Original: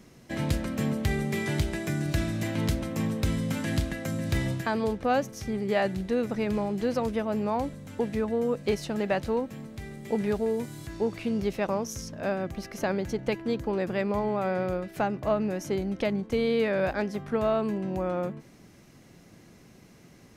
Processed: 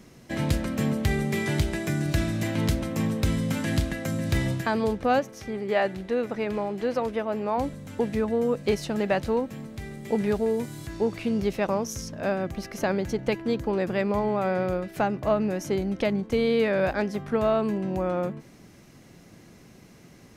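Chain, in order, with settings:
0:05.19–0:07.58: bass and treble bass −9 dB, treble −7 dB
level +2.5 dB

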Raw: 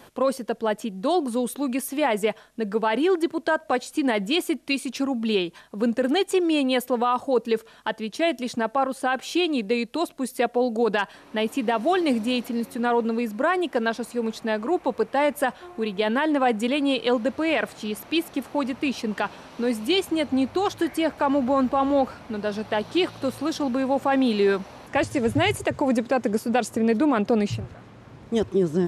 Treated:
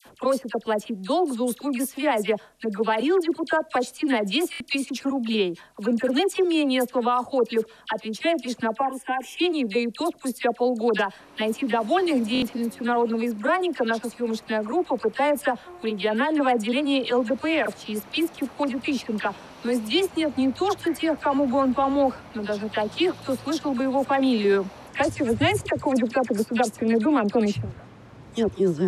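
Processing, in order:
0:08.77–0:09.39: phaser with its sweep stopped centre 870 Hz, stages 8
all-pass dispersion lows, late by 57 ms, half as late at 1,400 Hz
buffer that repeats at 0:04.51/0:12.33, samples 1,024, times 3

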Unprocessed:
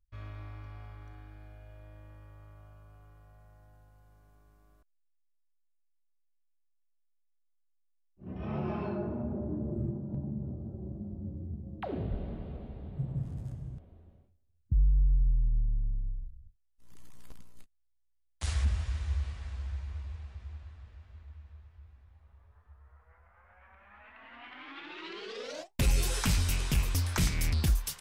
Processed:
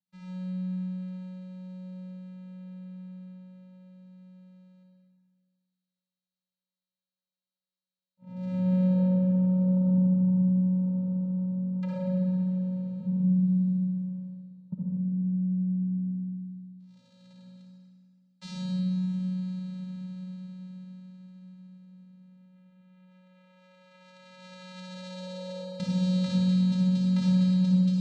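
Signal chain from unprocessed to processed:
tape delay 242 ms, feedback 36%, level −9 dB
channel vocoder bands 4, square 184 Hz
parametric band 4,200 Hz +12 dB 0.52 octaves
convolution reverb RT60 2.0 s, pre-delay 54 ms, DRR −5.5 dB
one half of a high-frequency compander encoder only
level −2 dB

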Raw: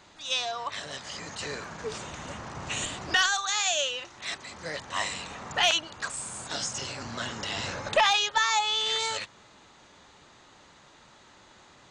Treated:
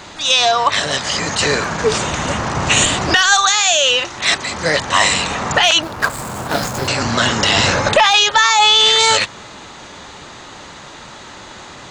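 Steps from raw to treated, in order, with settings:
0:05.82–0:06.88: running median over 15 samples
boost into a limiter +20.5 dB
level −1 dB

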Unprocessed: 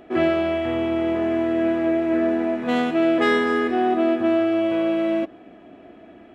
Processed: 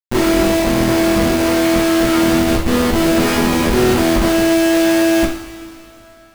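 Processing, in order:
comparator with hysteresis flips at −20.5 dBFS
coupled-rooms reverb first 0.53 s, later 3.3 s, from −17 dB, DRR −1 dB
level +4.5 dB

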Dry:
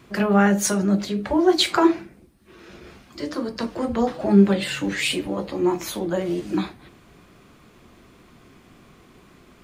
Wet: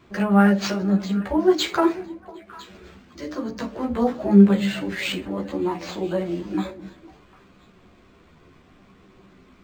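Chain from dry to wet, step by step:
echo through a band-pass that steps 251 ms, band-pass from 200 Hz, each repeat 1.4 octaves, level −10 dB
multi-voice chorus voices 4, 0.34 Hz, delay 13 ms, depth 2.9 ms
linearly interpolated sample-rate reduction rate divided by 4×
level +1 dB

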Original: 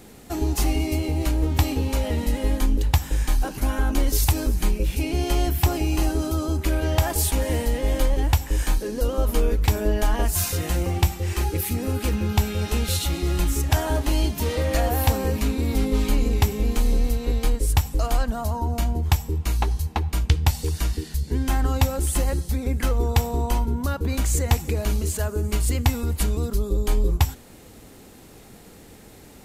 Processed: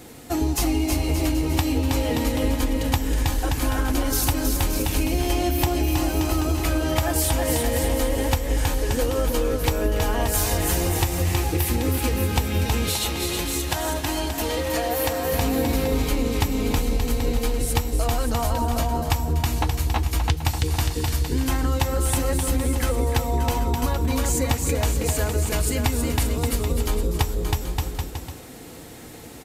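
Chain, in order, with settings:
low-shelf EQ 62 Hz −9.5 dB
notch comb filter 200 Hz
bouncing-ball delay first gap 320 ms, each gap 0.8×, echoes 5
downward compressor 4 to 1, threshold −24 dBFS, peak gain reduction 8.5 dB
0:12.89–0:15.32: low-shelf EQ 260 Hz −8 dB
level +5.5 dB

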